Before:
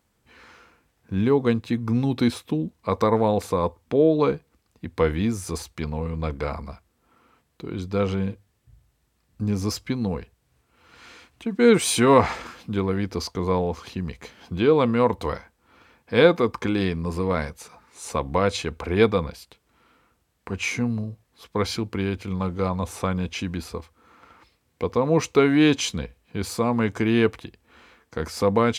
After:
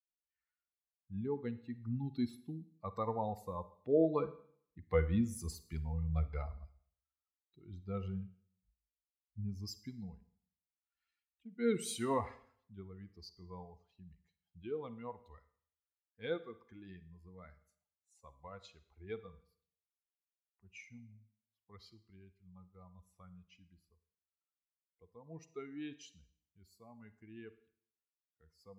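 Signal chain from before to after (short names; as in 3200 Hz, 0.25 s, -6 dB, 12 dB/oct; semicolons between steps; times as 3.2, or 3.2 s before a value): per-bin expansion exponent 2; Doppler pass-by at 5.9, 5 m/s, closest 5.3 m; Schroeder reverb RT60 0.6 s, DRR 14 dB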